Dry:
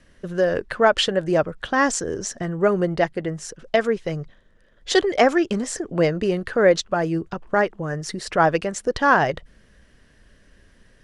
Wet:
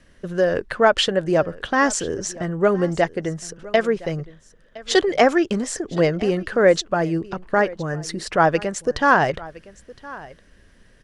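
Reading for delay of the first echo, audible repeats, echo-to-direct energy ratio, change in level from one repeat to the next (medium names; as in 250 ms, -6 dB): 1014 ms, 1, -20.0 dB, no regular repeats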